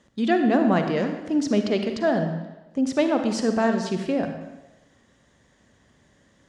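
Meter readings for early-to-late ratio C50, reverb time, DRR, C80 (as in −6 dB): 6.5 dB, 1.1 s, 6.0 dB, 8.5 dB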